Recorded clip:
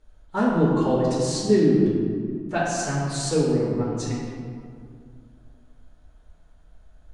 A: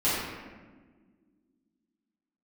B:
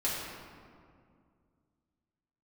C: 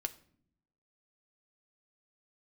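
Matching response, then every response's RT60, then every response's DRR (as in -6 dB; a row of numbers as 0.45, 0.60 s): B; 1.5, 2.2, 0.60 s; -12.5, -8.0, 6.5 dB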